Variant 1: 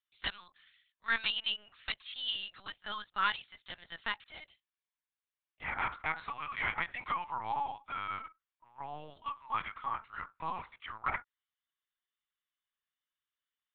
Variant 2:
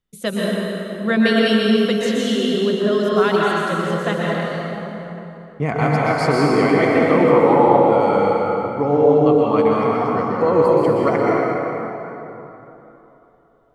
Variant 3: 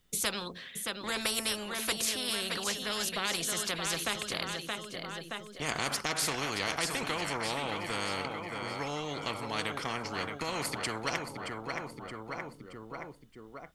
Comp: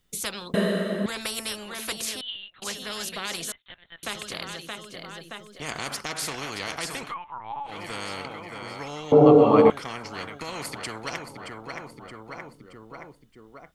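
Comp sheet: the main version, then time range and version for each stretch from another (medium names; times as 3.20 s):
3
0.54–1.06 s: from 2
2.21–2.62 s: from 1
3.52–4.03 s: from 1
7.07–7.71 s: from 1, crossfade 0.16 s
9.12–9.70 s: from 2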